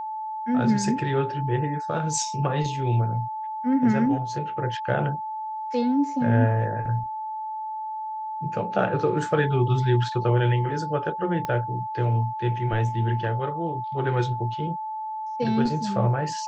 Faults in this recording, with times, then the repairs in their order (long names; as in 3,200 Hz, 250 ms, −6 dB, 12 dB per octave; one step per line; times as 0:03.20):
whistle 870 Hz −29 dBFS
0:11.45: click −15 dBFS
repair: click removal
notch filter 870 Hz, Q 30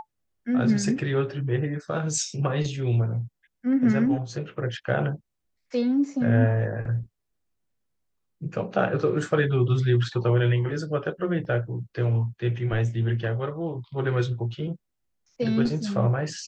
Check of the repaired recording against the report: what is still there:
0:11.45: click